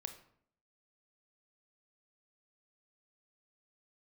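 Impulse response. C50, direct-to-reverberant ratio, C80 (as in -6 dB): 10.5 dB, 7.5 dB, 14.0 dB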